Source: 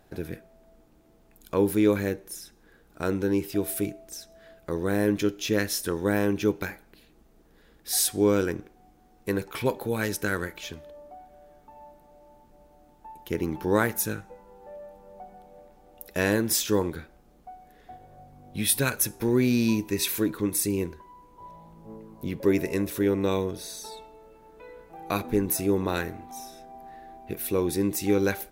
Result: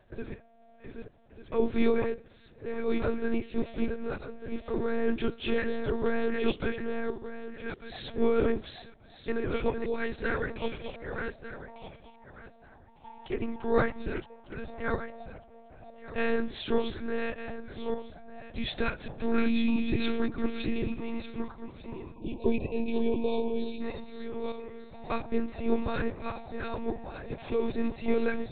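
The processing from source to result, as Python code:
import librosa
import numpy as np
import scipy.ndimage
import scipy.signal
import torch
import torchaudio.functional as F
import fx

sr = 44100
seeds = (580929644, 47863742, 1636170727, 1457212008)

y = fx.reverse_delay_fb(x, sr, ms=598, feedback_pct=42, wet_db=-4)
y = fx.lpc_monotone(y, sr, seeds[0], pitch_hz=230.0, order=10)
y = fx.spec_box(y, sr, start_s=22.15, length_s=1.66, low_hz=1100.0, high_hz=2300.0, gain_db=-22)
y = F.gain(torch.from_numpy(y), -3.0).numpy()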